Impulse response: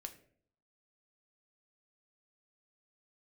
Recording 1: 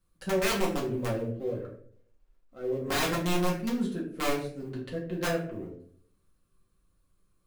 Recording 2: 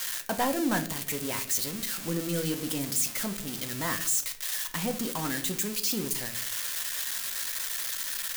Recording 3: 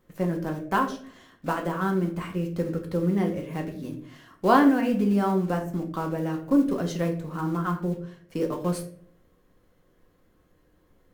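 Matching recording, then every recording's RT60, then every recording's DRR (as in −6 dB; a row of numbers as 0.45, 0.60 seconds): 2; 0.60, 0.60, 0.60 seconds; −4.5, 6.0, 2.0 decibels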